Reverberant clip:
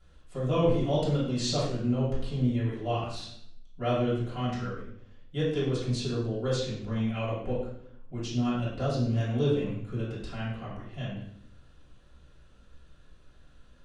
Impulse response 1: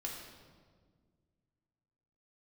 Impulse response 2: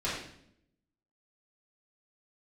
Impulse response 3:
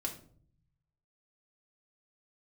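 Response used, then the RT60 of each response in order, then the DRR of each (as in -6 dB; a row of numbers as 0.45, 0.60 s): 2; 1.7, 0.70, 0.55 s; -2.0, -10.0, 0.0 dB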